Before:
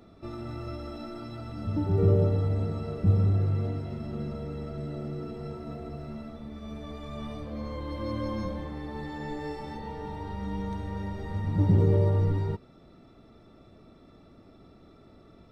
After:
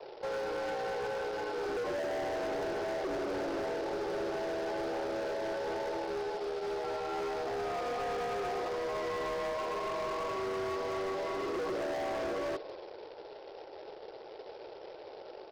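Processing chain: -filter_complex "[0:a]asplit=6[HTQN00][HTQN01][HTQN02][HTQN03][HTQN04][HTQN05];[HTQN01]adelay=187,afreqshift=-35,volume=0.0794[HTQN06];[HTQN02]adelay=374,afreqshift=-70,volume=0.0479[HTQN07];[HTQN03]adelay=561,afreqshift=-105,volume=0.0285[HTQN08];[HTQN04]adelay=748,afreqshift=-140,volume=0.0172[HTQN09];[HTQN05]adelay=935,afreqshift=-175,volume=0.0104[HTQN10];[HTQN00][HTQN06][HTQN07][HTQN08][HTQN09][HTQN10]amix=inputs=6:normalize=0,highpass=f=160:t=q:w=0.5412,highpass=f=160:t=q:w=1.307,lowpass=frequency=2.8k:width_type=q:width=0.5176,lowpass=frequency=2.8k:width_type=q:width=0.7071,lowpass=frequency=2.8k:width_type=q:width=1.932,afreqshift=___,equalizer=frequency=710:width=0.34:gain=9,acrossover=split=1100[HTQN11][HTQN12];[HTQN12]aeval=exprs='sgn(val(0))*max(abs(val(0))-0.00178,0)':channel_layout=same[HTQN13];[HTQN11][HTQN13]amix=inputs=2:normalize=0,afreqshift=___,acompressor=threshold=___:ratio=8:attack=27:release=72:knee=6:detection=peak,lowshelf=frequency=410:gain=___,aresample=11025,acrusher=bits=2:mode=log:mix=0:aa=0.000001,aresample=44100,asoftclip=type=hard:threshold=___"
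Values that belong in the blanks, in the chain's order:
67, 120, 0.0282, 2.5, 0.0237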